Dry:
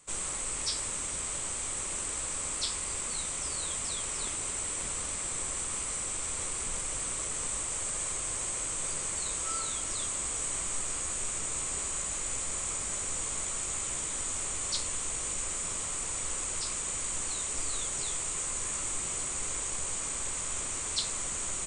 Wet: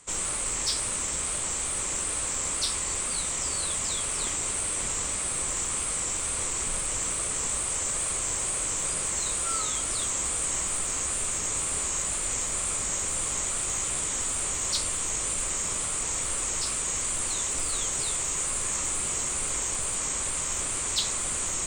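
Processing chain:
tape wow and flutter 76 cents
harmonic generator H 5 −24 dB, 8 −39 dB, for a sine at −16.5 dBFS
level +3 dB

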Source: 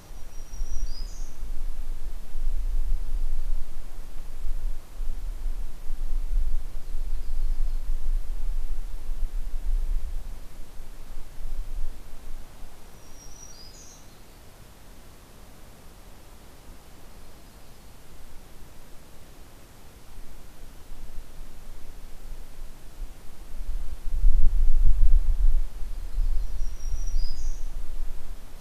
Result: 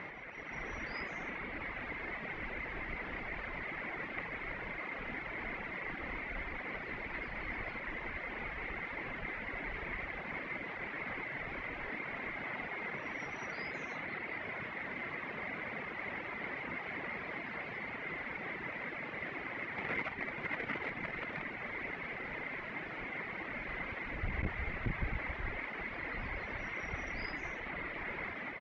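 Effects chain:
0:19.78–0:21.43: mu-law and A-law mismatch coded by mu
reverb reduction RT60 1.1 s
high-pass filter 200 Hz 12 dB per octave
automatic gain control gain up to 7.5 dB
transistor ladder low-pass 2,200 Hz, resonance 80%
multi-tap delay 52/86 ms −18.5/−18.5 dB
level +16 dB

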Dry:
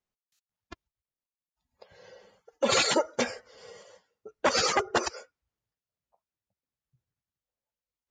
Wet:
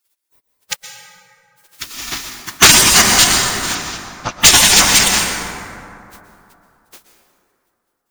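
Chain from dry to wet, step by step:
compressing power law on the bin magnitudes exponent 0.52
0:03.75–0:04.40: low-pass filter 5,400 Hz 24 dB per octave
gate on every frequency bin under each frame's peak −15 dB weak
gain into a clipping stage and back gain 35 dB
on a send at −5.5 dB: convolution reverb RT60 2.8 s, pre-delay 108 ms
on the sum: boost into a limiter +36 dB
level −1 dB

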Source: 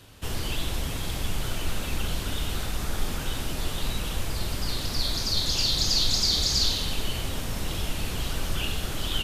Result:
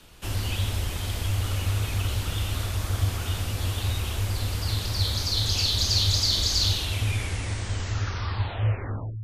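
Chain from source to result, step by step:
turntable brake at the end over 2.51 s
frequency shifter −110 Hz

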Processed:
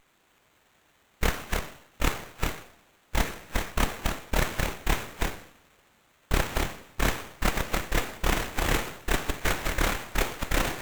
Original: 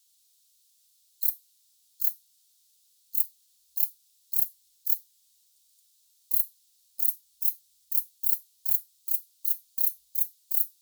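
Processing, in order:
delay that plays each chunk backwards 282 ms, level −5 dB
coupled-rooms reverb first 0.63 s, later 2.5 s, from −25 dB, DRR 5 dB
downward compressor, threshold −21 dBFS, peak gain reduction 5 dB
windowed peak hold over 9 samples
level +4 dB

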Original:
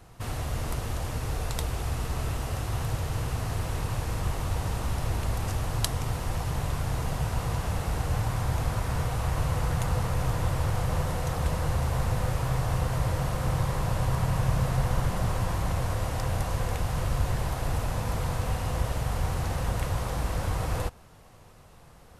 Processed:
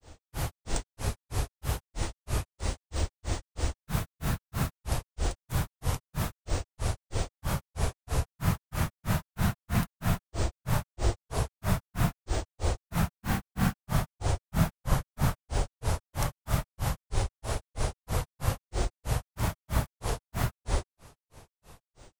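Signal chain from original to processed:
high-shelf EQ 5,900 Hz +7 dB
granular cloud 195 ms, grains 3.1 per second, pitch spread up and down by 7 semitones
level +3 dB

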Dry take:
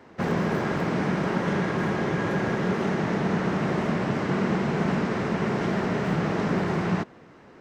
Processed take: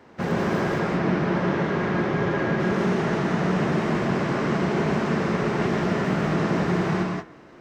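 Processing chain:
hum removal 64.49 Hz, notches 36
0:00.79–0:02.60: high-frequency loss of the air 100 metres
reverb whose tail is shaped and stops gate 210 ms rising, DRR 0.5 dB

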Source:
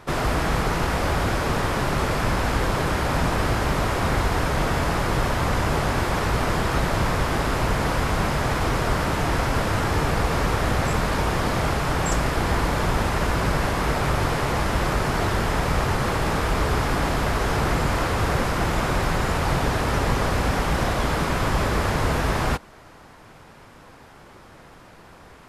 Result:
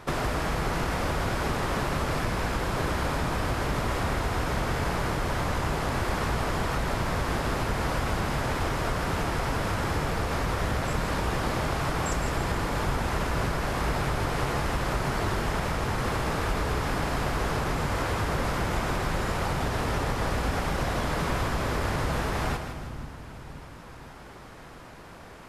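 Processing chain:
downward compressor, threshold −25 dBFS, peak gain reduction 9 dB
echo with a time of its own for lows and highs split 320 Hz, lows 514 ms, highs 159 ms, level −8 dB

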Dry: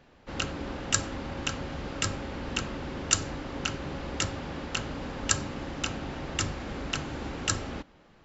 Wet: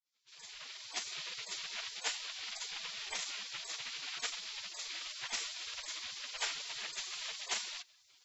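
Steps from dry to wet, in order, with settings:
fade in at the beginning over 1.18 s
gate on every frequency bin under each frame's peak −25 dB weak
level +10.5 dB

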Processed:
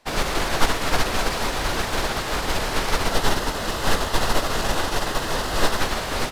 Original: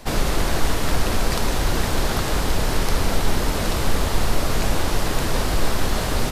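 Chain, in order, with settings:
0:03.08–0:05.81: notch filter 2,300 Hz, Q 6.7
mid-hump overdrive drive 14 dB, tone 4,500 Hz, clips at −16 dBFS
expander for the loud parts 2.5 to 1, over −34 dBFS
level +6.5 dB

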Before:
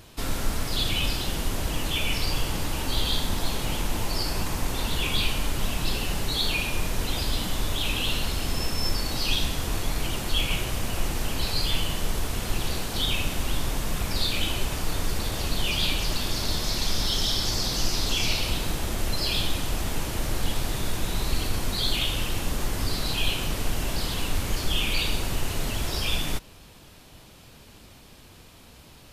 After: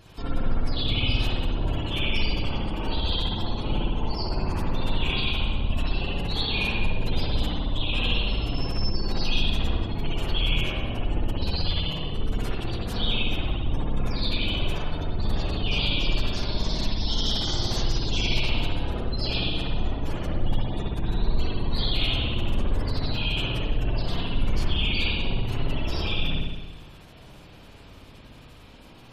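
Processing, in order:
gate on every frequency bin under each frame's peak −25 dB strong
spring reverb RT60 1.2 s, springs 58 ms, chirp 40 ms, DRR −5 dB
level −3.5 dB

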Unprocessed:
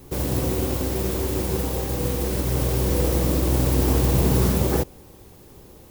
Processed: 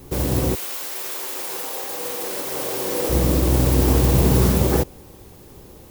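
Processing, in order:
0:00.54–0:03.09: high-pass filter 1,400 Hz → 360 Hz 12 dB per octave
level +3 dB

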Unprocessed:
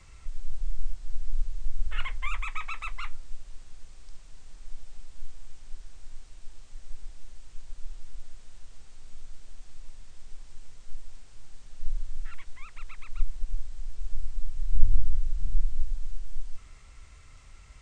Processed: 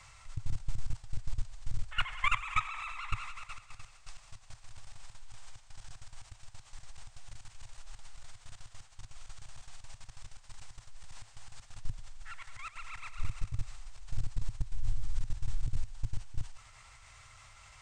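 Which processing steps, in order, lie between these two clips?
low shelf with overshoot 530 Hz −12.5 dB, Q 1.5
on a send: feedback echo with a high-pass in the loop 95 ms, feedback 77%, high-pass 220 Hz, level −8.5 dB
on the sum: output level in coarse steps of 16 dB
parametric band 110 Hz +12 dB 0.72 octaves
level +8 dB

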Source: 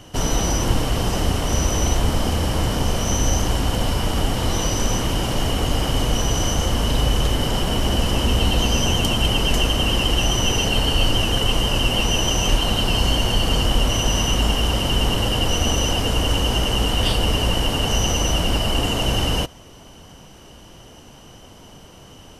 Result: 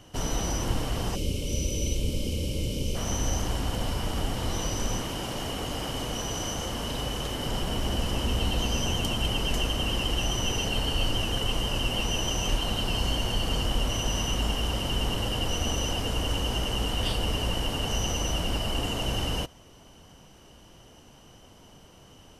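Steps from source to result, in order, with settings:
0:01.15–0:02.96: gain on a spectral selection 620–2,100 Hz −21 dB
0:05.02–0:07.45: low-shelf EQ 100 Hz −10 dB
level −8.5 dB

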